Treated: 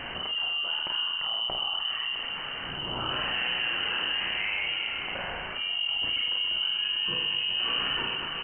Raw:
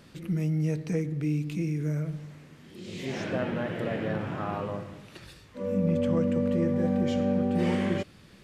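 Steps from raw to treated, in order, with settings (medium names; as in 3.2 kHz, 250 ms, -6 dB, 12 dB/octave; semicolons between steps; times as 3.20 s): tilt EQ +3 dB/octave; hum notches 50/100/150/200/250/300 Hz; frequency shift -360 Hz; doubling 34 ms -4.5 dB; reverse bouncing-ball echo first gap 50 ms, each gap 1.5×, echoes 5; frequency inversion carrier 3 kHz; level flattener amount 70%; trim -4.5 dB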